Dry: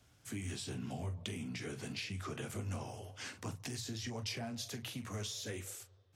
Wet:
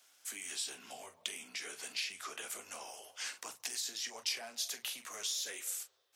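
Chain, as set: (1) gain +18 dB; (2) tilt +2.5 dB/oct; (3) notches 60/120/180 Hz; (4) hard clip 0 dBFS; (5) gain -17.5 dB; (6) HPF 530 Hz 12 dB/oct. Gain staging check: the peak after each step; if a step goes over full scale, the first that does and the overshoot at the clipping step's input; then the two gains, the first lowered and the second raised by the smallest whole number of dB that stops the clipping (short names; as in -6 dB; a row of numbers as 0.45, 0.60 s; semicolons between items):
-7.5, -3.5, -3.5, -3.5, -21.0, -21.0 dBFS; no overload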